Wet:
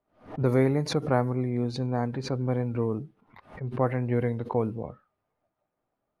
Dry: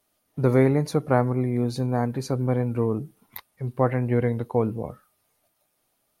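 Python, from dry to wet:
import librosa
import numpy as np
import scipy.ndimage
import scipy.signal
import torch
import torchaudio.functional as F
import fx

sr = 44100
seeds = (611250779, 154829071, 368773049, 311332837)

y = fx.env_lowpass(x, sr, base_hz=1300.0, full_db=-16.0)
y = fx.pre_swell(y, sr, db_per_s=150.0)
y = y * 10.0 ** (-4.0 / 20.0)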